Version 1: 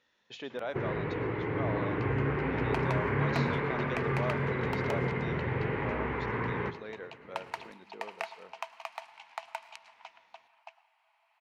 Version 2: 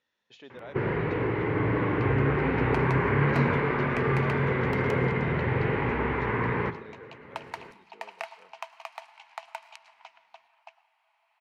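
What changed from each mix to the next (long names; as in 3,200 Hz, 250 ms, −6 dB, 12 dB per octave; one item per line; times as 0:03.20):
speech −7.5 dB
first sound +5.5 dB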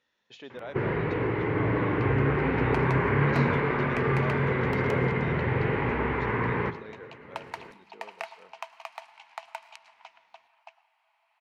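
speech +4.0 dB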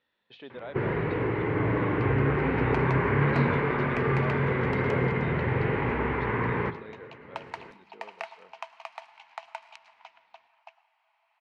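speech: add Chebyshev low-pass filter 4,100 Hz, order 3
master: add high-frequency loss of the air 61 metres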